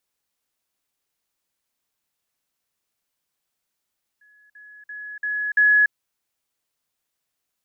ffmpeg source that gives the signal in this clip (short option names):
-f lavfi -i "aevalsrc='pow(10,(-52.5+10*floor(t/0.34))/20)*sin(2*PI*1690*t)*clip(min(mod(t,0.34),0.29-mod(t,0.34))/0.005,0,1)':d=1.7:s=44100"